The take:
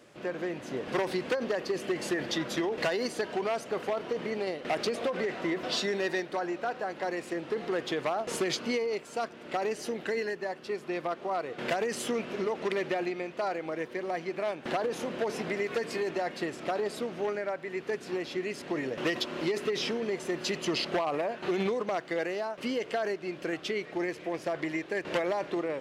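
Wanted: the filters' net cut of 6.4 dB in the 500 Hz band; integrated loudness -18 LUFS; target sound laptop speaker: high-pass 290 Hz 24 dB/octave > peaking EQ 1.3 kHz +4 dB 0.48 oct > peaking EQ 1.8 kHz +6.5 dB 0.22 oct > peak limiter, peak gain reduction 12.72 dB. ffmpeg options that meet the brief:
-af "highpass=f=290:w=0.5412,highpass=f=290:w=1.3066,equalizer=f=500:t=o:g=-8.5,equalizer=f=1300:t=o:w=0.48:g=4,equalizer=f=1800:t=o:w=0.22:g=6.5,volume=10.6,alimiter=limit=0.355:level=0:latency=1"

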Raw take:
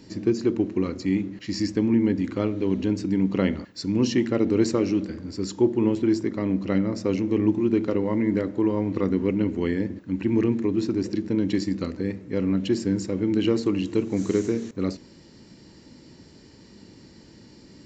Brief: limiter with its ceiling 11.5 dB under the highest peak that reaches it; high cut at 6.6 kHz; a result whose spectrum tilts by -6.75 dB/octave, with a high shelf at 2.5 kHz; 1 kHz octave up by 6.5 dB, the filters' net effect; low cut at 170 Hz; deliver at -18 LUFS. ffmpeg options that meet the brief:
-af "highpass=170,lowpass=6600,equalizer=f=1000:t=o:g=9,highshelf=f=2500:g=-7.5,volume=3.55,alimiter=limit=0.398:level=0:latency=1"

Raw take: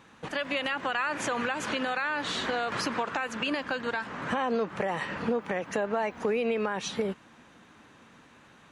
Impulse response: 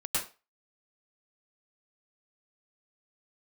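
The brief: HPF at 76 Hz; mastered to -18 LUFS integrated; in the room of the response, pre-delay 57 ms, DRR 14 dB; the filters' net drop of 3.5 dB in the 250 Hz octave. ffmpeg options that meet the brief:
-filter_complex "[0:a]highpass=76,equalizer=f=250:t=o:g=-4,asplit=2[s0][s1];[1:a]atrim=start_sample=2205,adelay=57[s2];[s1][s2]afir=irnorm=-1:irlink=0,volume=0.0944[s3];[s0][s3]amix=inputs=2:normalize=0,volume=4.47"

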